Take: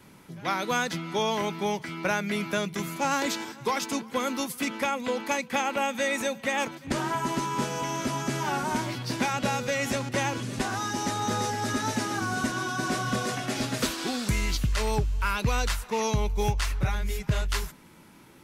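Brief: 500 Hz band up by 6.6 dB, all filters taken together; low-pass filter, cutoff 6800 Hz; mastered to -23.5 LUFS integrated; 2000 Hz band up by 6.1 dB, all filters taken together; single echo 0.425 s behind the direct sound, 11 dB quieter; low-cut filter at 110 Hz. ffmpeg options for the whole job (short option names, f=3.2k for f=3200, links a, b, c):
-af "highpass=110,lowpass=6.8k,equalizer=f=500:t=o:g=7.5,equalizer=f=2k:t=o:g=7.5,aecho=1:1:425:0.282,volume=1dB"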